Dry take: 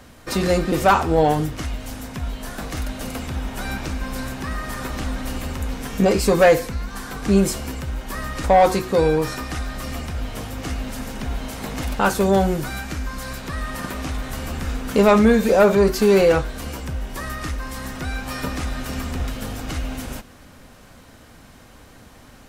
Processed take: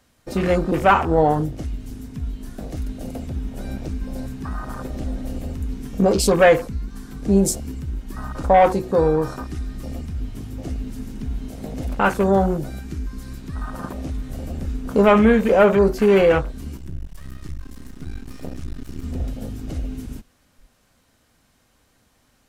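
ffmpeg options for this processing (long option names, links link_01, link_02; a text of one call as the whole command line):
ffmpeg -i in.wav -filter_complex "[0:a]asettb=1/sr,asplit=3[link_01][link_02][link_03];[link_01]atrim=end=16.774[link_04];[link_02]atrim=start=16.77:end=19.04,asetpts=PTS-STARTPTS,afade=type=in:duration=0.004:curve=qsin,afade=type=out:start_time=2.266:duration=0.004:curve=qsin,aeval=exprs='max(val(0),0)':channel_layout=same[link_05];[link_03]atrim=start=19.036[link_06];[link_04][link_05]acrossfade=duration=0.004:curve1=hsin:curve2=qsin[link_07];[link_07][link_06]acrossfade=duration=0.004:curve1=qsin:curve2=hsin,highshelf=frequency=3200:gain=7.5,afwtdn=0.0501,highshelf=frequency=12000:gain=-3" out.wav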